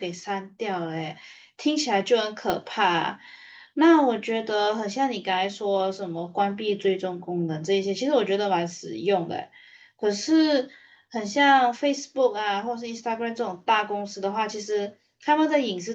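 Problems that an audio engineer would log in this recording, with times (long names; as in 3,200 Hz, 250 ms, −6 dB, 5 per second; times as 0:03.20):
0:02.50: click −10 dBFS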